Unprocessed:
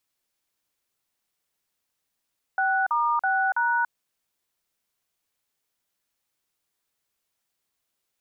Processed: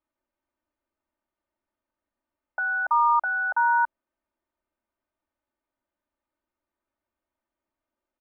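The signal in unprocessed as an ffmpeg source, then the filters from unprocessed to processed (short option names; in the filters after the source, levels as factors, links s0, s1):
-f lavfi -i "aevalsrc='0.0708*clip(min(mod(t,0.328),0.285-mod(t,0.328))/0.002,0,1)*(eq(floor(t/0.328),0)*(sin(2*PI*770*mod(t,0.328))+sin(2*PI*1477*mod(t,0.328)))+eq(floor(t/0.328),1)*(sin(2*PI*941*mod(t,0.328))+sin(2*PI*1209*mod(t,0.328)))+eq(floor(t/0.328),2)*(sin(2*PI*770*mod(t,0.328))+sin(2*PI*1477*mod(t,0.328)))+eq(floor(t/0.328),3)*(sin(2*PI*941*mod(t,0.328))+sin(2*PI*1477*mod(t,0.328))))':d=1.312:s=44100"
-af "lowpass=1200,aecho=1:1:3.3:0.99"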